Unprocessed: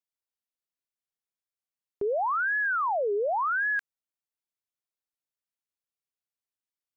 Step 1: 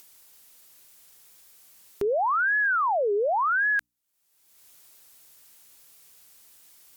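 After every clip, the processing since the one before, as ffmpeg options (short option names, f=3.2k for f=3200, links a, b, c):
-af "aemphasis=mode=production:type=cd,bandreject=f=60:t=h:w=6,bandreject=f=120:t=h:w=6,bandreject=f=180:t=h:w=6,bandreject=f=240:t=h:w=6,bandreject=f=300:t=h:w=6,acompressor=mode=upward:threshold=-34dB:ratio=2.5,volume=3dB"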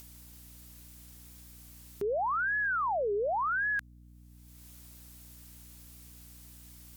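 -af "equalizer=f=130:w=0.44:g=7,alimiter=level_in=3dB:limit=-24dB:level=0:latency=1:release=39,volume=-3dB,aeval=exprs='val(0)+0.00224*(sin(2*PI*60*n/s)+sin(2*PI*2*60*n/s)/2+sin(2*PI*3*60*n/s)/3+sin(2*PI*4*60*n/s)/4+sin(2*PI*5*60*n/s)/5)':c=same"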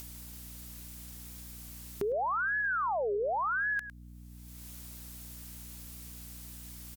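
-filter_complex "[0:a]asplit=2[a][b];[b]adelay=105,volume=-15dB,highshelf=f=4k:g=-2.36[c];[a][c]amix=inputs=2:normalize=0,acompressor=threshold=-40dB:ratio=2,volume=5.5dB"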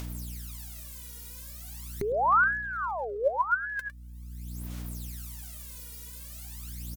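-af "aphaser=in_gain=1:out_gain=1:delay=2.1:decay=0.75:speed=0.42:type=sinusoidal"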